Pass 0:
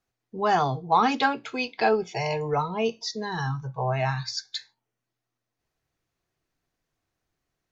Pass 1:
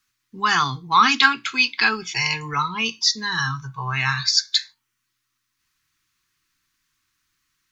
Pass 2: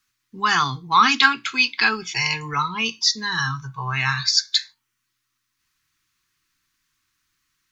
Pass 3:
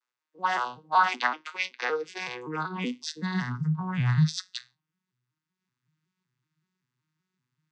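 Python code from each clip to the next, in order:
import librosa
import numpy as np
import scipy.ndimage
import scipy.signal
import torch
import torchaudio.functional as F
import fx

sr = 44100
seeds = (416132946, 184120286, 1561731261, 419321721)

y1 = fx.curve_eq(x, sr, hz=(310.0, 620.0, 1100.0, 4200.0), db=(0, -22, 10, 14))
y2 = y1
y3 = fx.vocoder_arp(y2, sr, chord='major triad', root=47, every_ms=189)
y3 = fx.filter_sweep_highpass(y3, sr, from_hz=580.0, to_hz=150.0, start_s=1.62, end_s=3.98, q=3.2)
y3 = y3 * librosa.db_to_amplitude(-8.5)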